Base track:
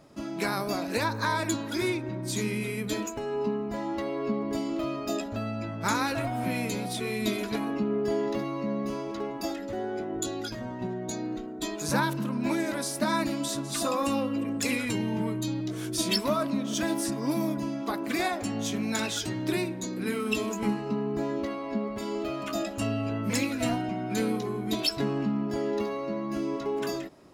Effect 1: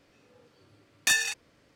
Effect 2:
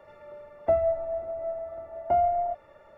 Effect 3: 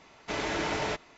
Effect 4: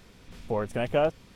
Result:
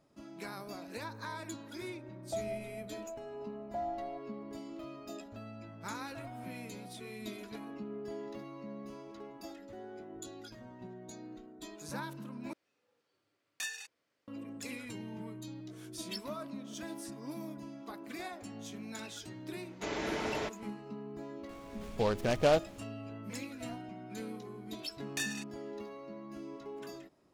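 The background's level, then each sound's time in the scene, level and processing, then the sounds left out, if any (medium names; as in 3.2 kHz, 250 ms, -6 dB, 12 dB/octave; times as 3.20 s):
base track -14.5 dB
1.64 s: add 2 -14.5 dB + low-pass 1.4 kHz
12.53 s: replace with 1 -15.5 dB + high-pass 470 Hz 6 dB/octave
19.53 s: add 3 -7 dB + peaking EQ 410 Hz +4.5 dB 1.1 oct
21.49 s: add 4 -2 dB + delay time shaken by noise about 2.8 kHz, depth 0.04 ms
24.10 s: add 1 -13 dB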